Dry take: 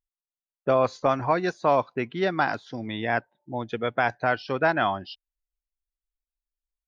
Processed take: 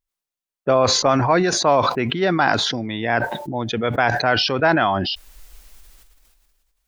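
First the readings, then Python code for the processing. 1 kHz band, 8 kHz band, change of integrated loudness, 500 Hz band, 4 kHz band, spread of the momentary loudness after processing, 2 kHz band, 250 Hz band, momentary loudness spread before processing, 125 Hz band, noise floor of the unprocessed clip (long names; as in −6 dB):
+6.0 dB, can't be measured, +7.0 dB, +5.5 dB, +17.0 dB, 9 LU, +6.5 dB, +8.0 dB, 11 LU, +9.0 dB, below −85 dBFS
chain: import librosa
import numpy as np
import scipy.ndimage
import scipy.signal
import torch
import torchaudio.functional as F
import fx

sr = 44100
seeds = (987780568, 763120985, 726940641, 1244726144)

y = fx.sustainer(x, sr, db_per_s=27.0)
y = y * 10.0 ** (4.5 / 20.0)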